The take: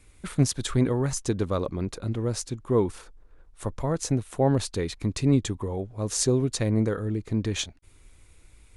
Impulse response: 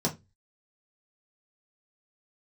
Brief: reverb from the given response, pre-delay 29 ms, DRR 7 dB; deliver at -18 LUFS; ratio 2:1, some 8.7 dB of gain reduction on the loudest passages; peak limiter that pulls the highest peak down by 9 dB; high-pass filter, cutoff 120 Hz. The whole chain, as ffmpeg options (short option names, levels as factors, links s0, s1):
-filter_complex "[0:a]highpass=120,acompressor=threshold=0.0224:ratio=2,alimiter=level_in=1.12:limit=0.0631:level=0:latency=1,volume=0.891,asplit=2[s0][s1];[1:a]atrim=start_sample=2205,adelay=29[s2];[s1][s2]afir=irnorm=-1:irlink=0,volume=0.178[s3];[s0][s3]amix=inputs=2:normalize=0,volume=5.96"